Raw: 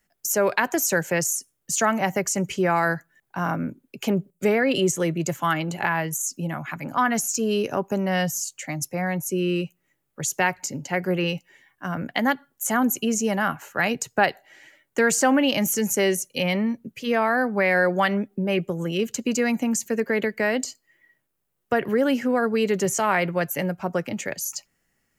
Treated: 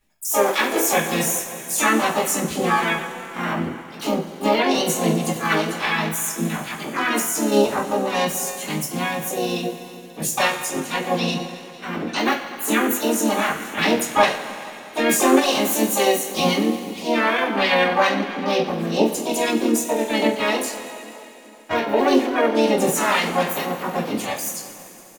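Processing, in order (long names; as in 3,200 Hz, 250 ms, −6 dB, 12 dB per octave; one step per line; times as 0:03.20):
phase shifter 0.79 Hz, delay 3.8 ms, feedback 42%
on a send: single-tap delay 86 ms −22 dB
on the sum: coupled-rooms reverb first 0.29 s, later 3.2 s, from −18 dB, DRR −7.5 dB
pitch-shifted copies added +5 semitones −2 dB, +7 semitones −6 dB, +12 semitones −6 dB
level −9 dB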